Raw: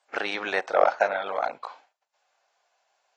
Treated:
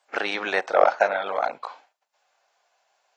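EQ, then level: HPF 97 Hz; +2.5 dB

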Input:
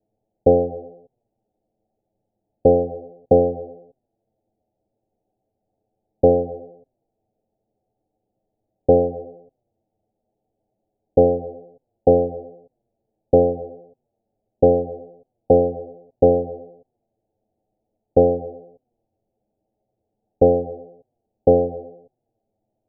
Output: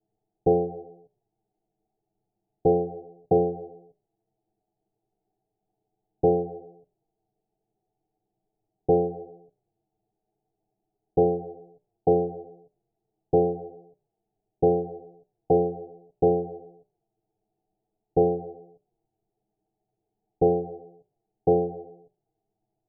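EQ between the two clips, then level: air absorption 470 m; notches 60/120/180/240/300/360/420/480/540/600 Hz; fixed phaser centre 370 Hz, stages 8; 0.0 dB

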